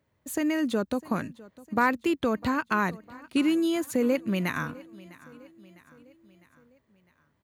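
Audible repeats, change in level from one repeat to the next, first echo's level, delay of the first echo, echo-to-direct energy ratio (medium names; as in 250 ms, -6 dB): 3, -5.5 dB, -21.0 dB, 654 ms, -19.5 dB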